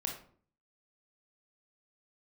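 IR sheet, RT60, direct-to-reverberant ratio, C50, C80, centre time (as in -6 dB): 0.50 s, 1.0 dB, 6.0 dB, 11.0 dB, 25 ms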